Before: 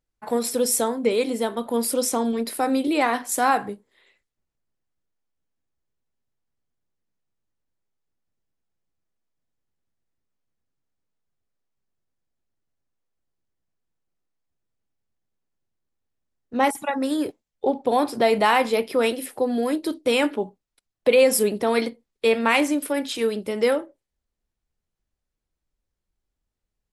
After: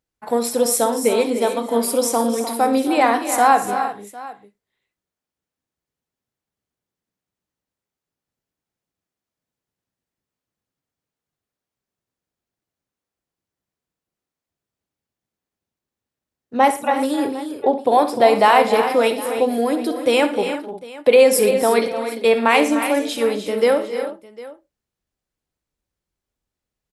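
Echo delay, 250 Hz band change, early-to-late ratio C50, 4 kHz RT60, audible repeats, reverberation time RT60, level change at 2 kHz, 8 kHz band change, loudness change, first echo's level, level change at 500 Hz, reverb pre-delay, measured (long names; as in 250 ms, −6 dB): 64 ms, +3.0 dB, no reverb audible, no reverb audible, 6, no reverb audible, +3.5 dB, +3.0 dB, +5.0 dB, −13.0 dB, +5.5 dB, no reverb audible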